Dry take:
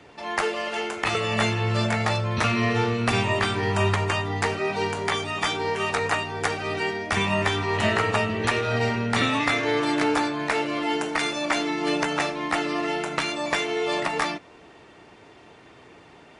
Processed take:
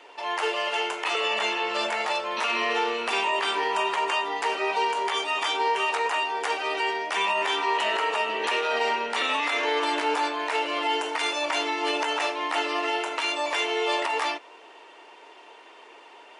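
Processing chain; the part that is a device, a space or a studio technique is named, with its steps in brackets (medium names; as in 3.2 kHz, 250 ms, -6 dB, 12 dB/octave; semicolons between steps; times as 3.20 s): laptop speaker (high-pass 380 Hz 24 dB/octave; peaking EQ 950 Hz +9 dB 0.21 oct; peaking EQ 2.9 kHz +7 dB 0.33 oct; peak limiter -16 dBFS, peak gain reduction 9.5 dB); 1.13–1.78 s: low-pass 8.4 kHz 12 dB/octave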